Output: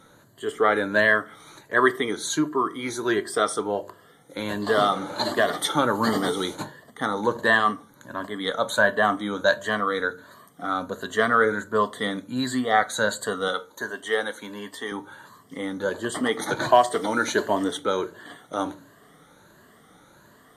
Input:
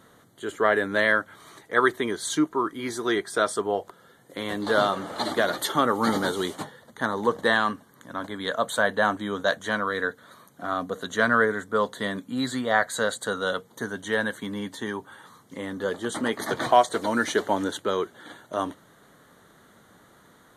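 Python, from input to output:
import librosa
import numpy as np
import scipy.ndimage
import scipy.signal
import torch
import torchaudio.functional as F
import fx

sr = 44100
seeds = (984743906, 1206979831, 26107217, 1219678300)

y = fx.spec_ripple(x, sr, per_octave=1.4, drift_hz=1.4, depth_db=10)
y = fx.bass_treble(y, sr, bass_db=-15, treble_db=0, at=(13.48, 14.92))
y = fx.room_shoebox(y, sr, seeds[0], volume_m3=220.0, walls='furnished', distance_m=0.38)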